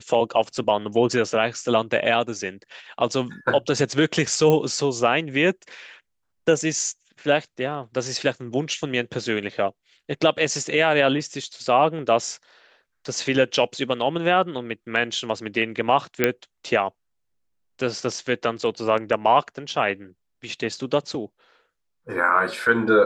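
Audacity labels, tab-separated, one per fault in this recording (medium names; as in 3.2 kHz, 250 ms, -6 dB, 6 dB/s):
4.500000	4.500000	pop -9 dBFS
16.240000	16.240000	pop -4 dBFS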